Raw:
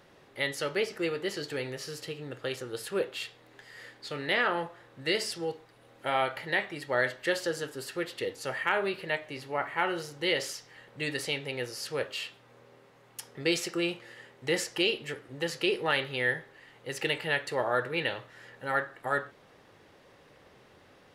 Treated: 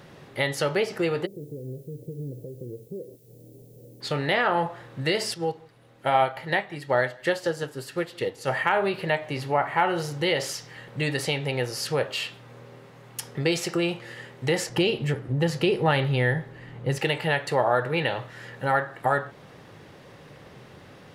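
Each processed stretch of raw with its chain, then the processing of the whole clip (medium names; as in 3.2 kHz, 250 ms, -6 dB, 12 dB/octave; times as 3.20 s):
1.25–4.00 s: compression, threshold -43 dBFS + steep low-pass 530 Hz + added noise violet -69 dBFS
5.34–8.48 s: delay 164 ms -22.5 dB + upward expansion, over -41 dBFS
14.69–16.98 s: bass shelf 260 Hz +11.5 dB + tape noise reduction on one side only decoder only
whole clip: peaking EQ 140 Hz +9 dB 1.2 oct; compression 2:1, threshold -35 dBFS; dynamic bell 780 Hz, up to +8 dB, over -51 dBFS, Q 1.5; trim +8 dB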